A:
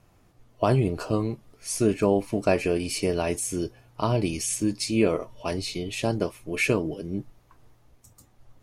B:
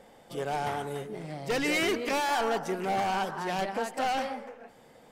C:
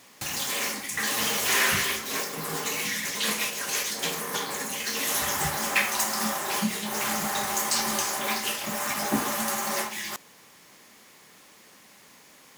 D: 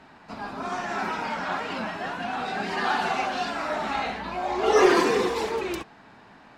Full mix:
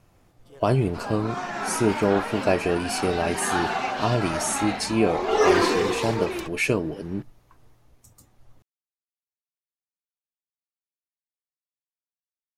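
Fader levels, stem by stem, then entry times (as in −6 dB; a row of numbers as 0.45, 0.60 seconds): +0.5 dB, −15.0 dB, muted, −0.5 dB; 0.00 s, 0.15 s, muted, 0.65 s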